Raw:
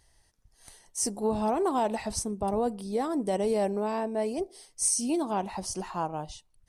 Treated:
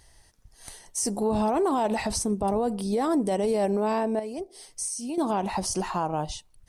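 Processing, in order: 4.19–5.18 compressor 3:1, threshold -43 dBFS, peak gain reduction 15 dB; limiter -26 dBFS, peak gain reduction 9.5 dB; gain +8 dB

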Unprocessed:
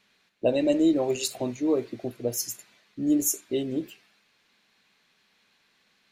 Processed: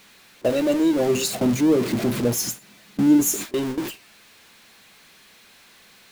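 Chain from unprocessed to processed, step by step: zero-crossing step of -25 dBFS; 0.99–3.44 bell 190 Hz +11.5 dB 1.2 oct; gate with hold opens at -17 dBFS

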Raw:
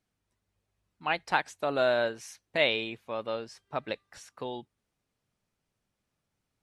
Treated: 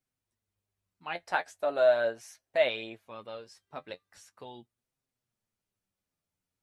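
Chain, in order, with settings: high shelf 7300 Hz +8.5 dB; flange 0.4 Hz, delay 7.4 ms, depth 4.4 ms, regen +36%; 1.15–3.07 fifteen-band EQ 160 Hz -5 dB, 630 Hz +11 dB, 1600 Hz +5 dB; gain -4.5 dB

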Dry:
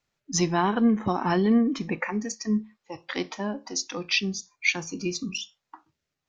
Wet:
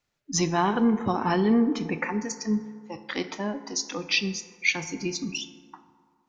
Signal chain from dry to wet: FDN reverb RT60 2 s, low-frequency decay 0.85×, high-frequency decay 0.4×, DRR 10.5 dB

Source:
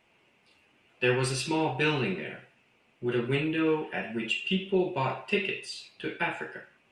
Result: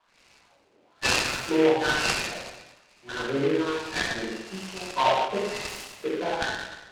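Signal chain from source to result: wah 1.1 Hz 410–2600 Hz, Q 4.2; reverb RT60 1.1 s, pre-delay 3 ms, DRR -6.5 dB; noise-modulated delay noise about 1900 Hz, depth 0.068 ms; gain +4.5 dB

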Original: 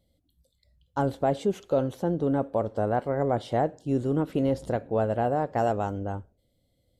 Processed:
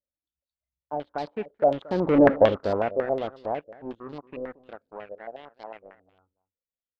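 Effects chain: Doppler pass-by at 2.29, 20 m/s, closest 2.1 m; bell 120 Hz -8 dB 0.9 oct; sample leveller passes 3; echo 0.227 s -18.5 dB; stepped low-pass 11 Hz 530–4500 Hz; gain +2 dB

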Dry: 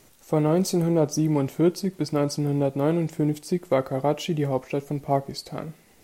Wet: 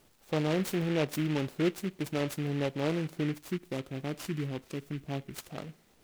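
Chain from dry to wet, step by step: 3.34–5.5 band shelf 1000 Hz -10.5 dB 2.5 oct; noise-modulated delay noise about 2000 Hz, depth 0.097 ms; gain -8 dB

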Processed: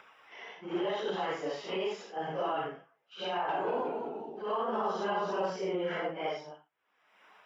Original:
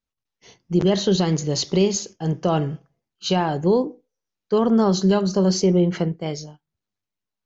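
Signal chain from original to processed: phase scrambler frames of 0.2 s; HPF 910 Hz 12 dB/oct; high shelf 2100 Hz -10 dB; limiter -29.5 dBFS, peak gain reduction 10.5 dB; upward compressor, threshold -52 dBFS; polynomial smoothing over 25 samples; phaser 0.92 Hz, delay 4.9 ms, feedback 26%; 3.31–5.5 echoes that change speed 0.178 s, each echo -1 st, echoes 3, each echo -6 dB; three-band squash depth 40%; gain +5 dB

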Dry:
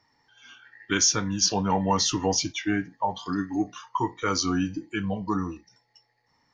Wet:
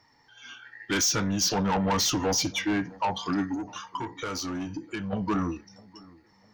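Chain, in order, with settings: soft clip -26 dBFS, distortion -8 dB; 3.54–5.13 compressor, threshold -36 dBFS, peak gain reduction 8 dB; dark delay 0.656 s, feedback 39%, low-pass 1500 Hz, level -23 dB; gain +4.5 dB

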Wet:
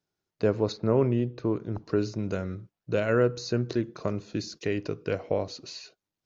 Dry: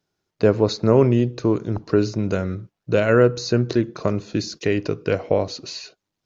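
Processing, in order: 0.72–1.75 Bessel low-pass 3200 Hz, order 2; gain -8 dB

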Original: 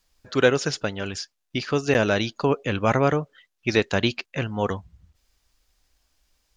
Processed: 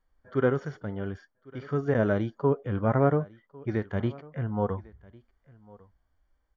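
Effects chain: polynomial smoothing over 41 samples; echo 1.101 s -23.5 dB; harmonic-percussive split percussive -14 dB

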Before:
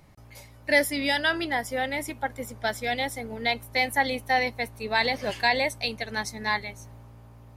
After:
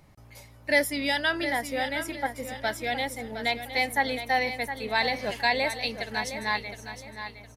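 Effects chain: feedback echo 0.713 s, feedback 32%, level -10 dB; gain -1.5 dB

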